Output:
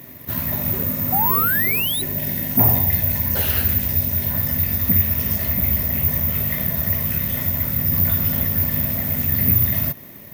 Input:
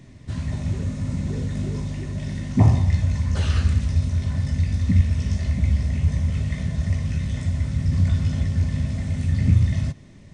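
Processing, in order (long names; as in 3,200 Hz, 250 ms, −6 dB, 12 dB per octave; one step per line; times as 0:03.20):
0:01.94–0:04.34: parametric band 1,200 Hz −13 dB 0.25 octaves
0:01.12–0:02.02: sound drawn into the spectrogram rise 730–4,000 Hz −31 dBFS
high-shelf EQ 5,800 Hz +8 dB
mid-hump overdrive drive 25 dB, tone 1,400 Hz, clips at −4.5 dBFS
bad sample-rate conversion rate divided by 3×, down none, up zero stuff
level −6 dB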